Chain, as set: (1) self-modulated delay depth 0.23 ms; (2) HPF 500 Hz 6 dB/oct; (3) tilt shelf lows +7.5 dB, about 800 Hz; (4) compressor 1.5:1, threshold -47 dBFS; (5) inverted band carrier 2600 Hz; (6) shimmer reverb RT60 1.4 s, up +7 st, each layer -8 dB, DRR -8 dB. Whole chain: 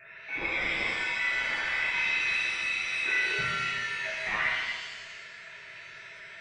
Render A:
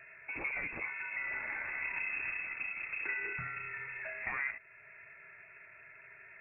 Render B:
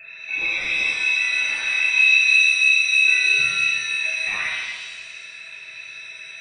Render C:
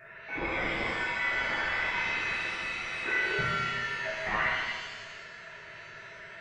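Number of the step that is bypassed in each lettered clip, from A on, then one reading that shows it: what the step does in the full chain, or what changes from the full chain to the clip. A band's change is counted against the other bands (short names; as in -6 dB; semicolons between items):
6, loudness change -9.0 LU; 2, 1 kHz band -13.0 dB; 3, 8 kHz band -9.0 dB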